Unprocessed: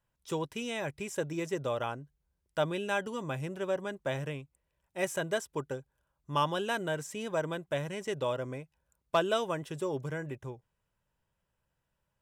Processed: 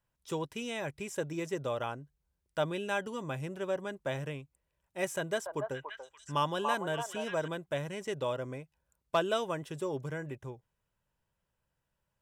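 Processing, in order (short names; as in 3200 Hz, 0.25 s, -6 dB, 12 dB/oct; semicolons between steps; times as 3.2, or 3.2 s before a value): 5.16–7.48 delay with a stepping band-pass 0.287 s, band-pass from 850 Hz, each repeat 1.4 oct, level -1 dB; gain -1.5 dB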